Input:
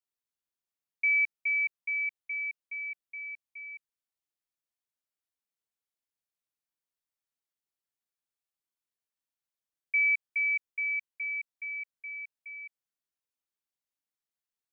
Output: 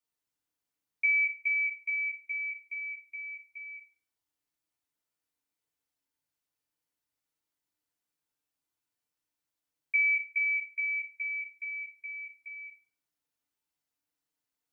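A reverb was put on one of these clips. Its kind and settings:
feedback delay network reverb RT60 0.46 s, low-frequency decay 1.45×, high-frequency decay 0.65×, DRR −2.5 dB

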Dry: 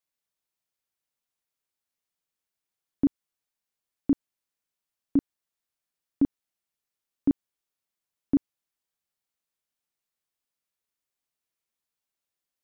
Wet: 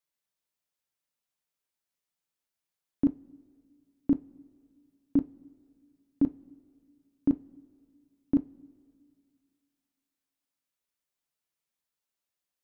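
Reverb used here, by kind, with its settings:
coupled-rooms reverb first 0.23 s, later 2.2 s, from −20 dB, DRR 10.5 dB
level −1.5 dB

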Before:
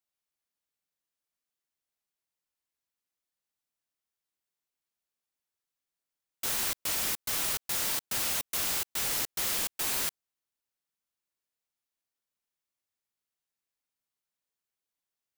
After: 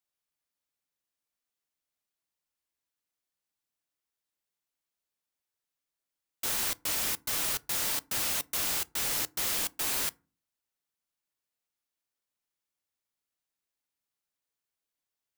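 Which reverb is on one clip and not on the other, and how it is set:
feedback delay network reverb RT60 0.33 s, low-frequency decay 1.6×, high-frequency decay 0.55×, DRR 17.5 dB

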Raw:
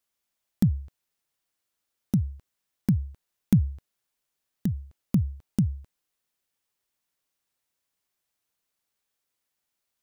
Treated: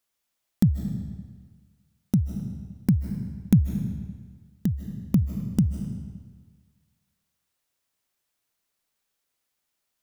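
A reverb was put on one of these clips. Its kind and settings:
comb and all-pass reverb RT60 1.5 s, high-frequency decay 0.9×, pre-delay 115 ms, DRR 7 dB
level +2 dB

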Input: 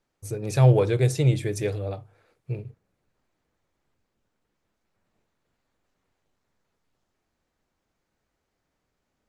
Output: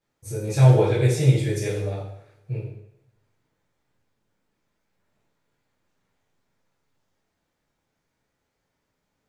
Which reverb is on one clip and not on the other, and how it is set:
coupled-rooms reverb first 0.71 s, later 1.8 s, from −26 dB, DRR −8 dB
level −6.5 dB

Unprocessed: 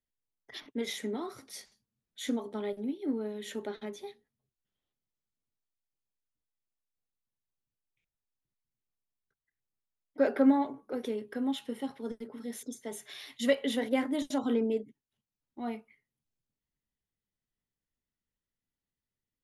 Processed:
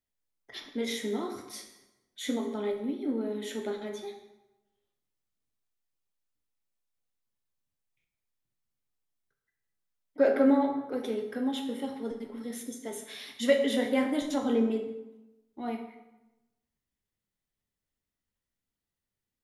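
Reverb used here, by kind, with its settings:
dense smooth reverb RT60 1 s, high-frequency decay 0.75×, DRR 3.5 dB
level +1 dB

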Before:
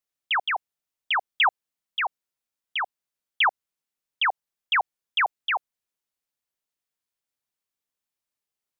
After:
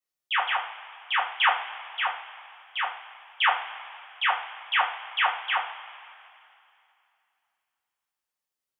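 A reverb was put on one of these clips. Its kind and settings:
coupled-rooms reverb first 0.38 s, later 2.7 s, from −18 dB, DRR −8 dB
level −9 dB

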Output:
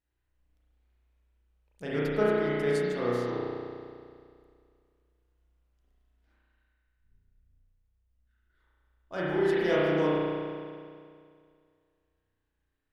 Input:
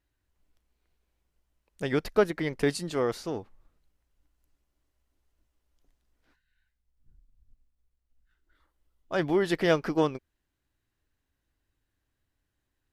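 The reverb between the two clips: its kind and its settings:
spring reverb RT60 2.2 s, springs 33 ms, chirp 65 ms, DRR −8 dB
level −9 dB

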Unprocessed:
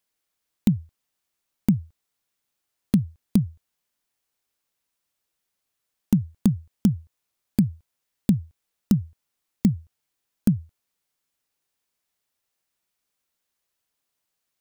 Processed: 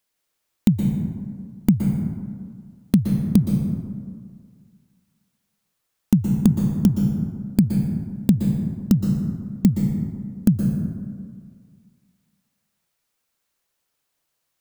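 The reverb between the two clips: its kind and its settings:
dense smooth reverb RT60 1.9 s, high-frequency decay 0.4×, pre-delay 110 ms, DRR 1.5 dB
level +3 dB

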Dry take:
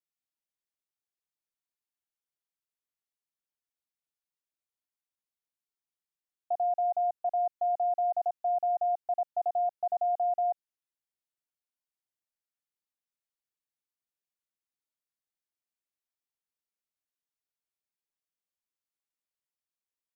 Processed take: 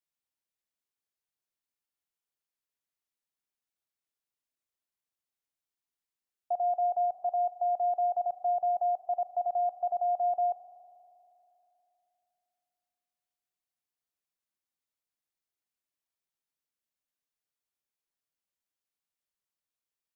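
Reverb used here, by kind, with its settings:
spring reverb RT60 3.1 s, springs 39 ms, chirp 25 ms, DRR 12 dB

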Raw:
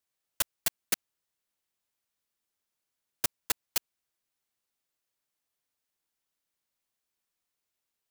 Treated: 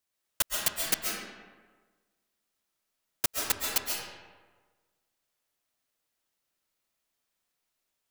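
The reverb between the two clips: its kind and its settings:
comb and all-pass reverb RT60 1.4 s, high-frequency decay 0.6×, pre-delay 95 ms, DRR −1.5 dB
level +1 dB

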